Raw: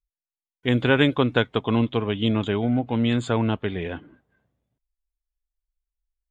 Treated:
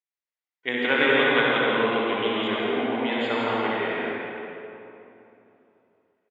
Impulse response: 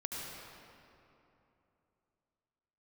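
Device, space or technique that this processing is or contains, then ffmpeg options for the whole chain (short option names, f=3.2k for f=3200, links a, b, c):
station announcement: -filter_complex "[0:a]highpass=460,lowpass=4.6k,equalizer=f=2k:t=o:w=0.36:g=7.5,aecho=1:1:61.22|166.2|212.8:0.562|0.562|0.282[a];[1:a]atrim=start_sample=2205[b];[a][b]afir=irnorm=-1:irlink=0,asettb=1/sr,asplit=3[c][d][e];[c]atrim=end=2.494[f];[d]atrim=start=2.49:end=3.94,asetpts=PTS-STARTPTS,afade=t=in:d=0.004:c=qsin,afade=t=out:st=1.446:d=0.004:c=qsin,lowpass=5.4k[g];[e]atrim=start=3.936[h];[f][g]acrossfade=d=0.004:c1=hsin:c2=qsin[i];[i][h]acrossfade=d=0.004:c1=qsin:c2=hsin"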